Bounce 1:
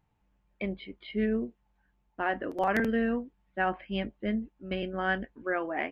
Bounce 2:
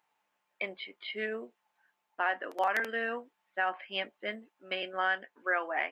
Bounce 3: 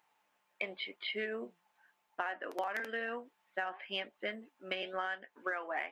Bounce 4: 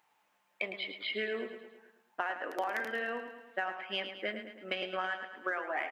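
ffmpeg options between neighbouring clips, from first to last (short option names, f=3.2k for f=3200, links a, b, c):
-af "highpass=760,alimiter=limit=-23dB:level=0:latency=1:release=376,volume=5dB"
-af "aeval=exprs='0.133*(cos(1*acos(clip(val(0)/0.133,-1,1)))-cos(1*PI/2))+0.00133*(cos(7*acos(clip(val(0)/0.133,-1,1)))-cos(7*PI/2))':c=same,flanger=delay=0.3:depth=5.7:regen=88:speed=0.95:shape=triangular,acompressor=threshold=-42dB:ratio=6,volume=8dB"
-af "aecho=1:1:108|216|324|432|540|648:0.355|0.188|0.0997|0.0528|0.028|0.0148,volume=2dB"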